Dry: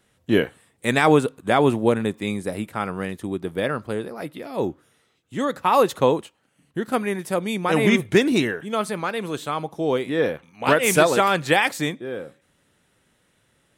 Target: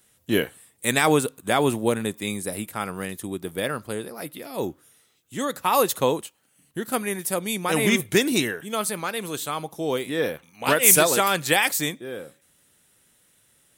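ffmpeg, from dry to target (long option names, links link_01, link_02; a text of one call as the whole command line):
ffmpeg -i in.wav -af "aemphasis=mode=production:type=75fm,volume=-3dB" out.wav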